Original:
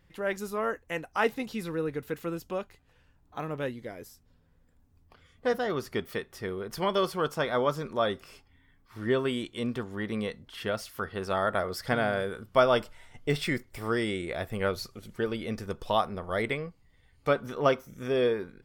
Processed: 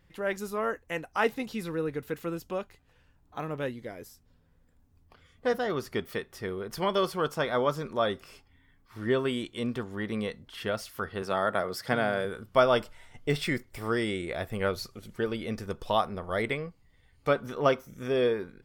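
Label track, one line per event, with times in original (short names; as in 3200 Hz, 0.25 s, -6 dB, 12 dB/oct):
11.220000	12.250000	HPF 110 Hz 24 dB/oct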